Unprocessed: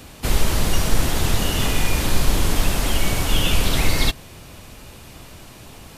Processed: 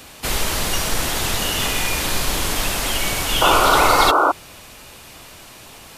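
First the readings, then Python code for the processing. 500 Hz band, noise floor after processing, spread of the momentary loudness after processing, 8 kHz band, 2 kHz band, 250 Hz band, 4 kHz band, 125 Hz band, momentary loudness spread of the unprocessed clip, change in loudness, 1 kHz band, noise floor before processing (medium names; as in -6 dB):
+6.0 dB, -42 dBFS, 8 LU, +4.0 dB, +5.5 dB, -1.5 dB, +4.0 dB, -6.5 dB, 21 LU, +3.5 dB, +12.0 dB, -42 dBFS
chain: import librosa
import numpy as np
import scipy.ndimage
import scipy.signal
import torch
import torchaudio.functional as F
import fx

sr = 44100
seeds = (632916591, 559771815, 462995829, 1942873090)

y = fx.spec_paint(x, sr, seeds[0], shape='noise', start_s=3.41, length_s=0.91, low_hz=270.0, high_hz=1500.0, level_db=-17.0)
y = fx.low_shelf(y, sr, hz=370.0, db=-11.5)
y = y * 10.0 ** (4.0 / 20.0)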